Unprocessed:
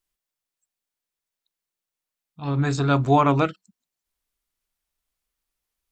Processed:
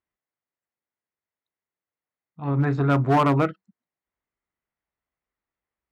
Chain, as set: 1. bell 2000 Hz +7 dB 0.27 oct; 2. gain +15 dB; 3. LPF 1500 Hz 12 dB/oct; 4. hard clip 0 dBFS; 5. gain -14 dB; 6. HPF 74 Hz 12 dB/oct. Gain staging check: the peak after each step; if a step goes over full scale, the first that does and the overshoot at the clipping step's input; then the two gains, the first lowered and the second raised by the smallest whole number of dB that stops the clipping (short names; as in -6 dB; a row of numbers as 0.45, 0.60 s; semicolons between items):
-6.5, +8.5, +8.5, 0.0, -14.0, -10.0 dBFS; step 2, 8.5 dB; step 2 +6 dB, step 5 -5 dB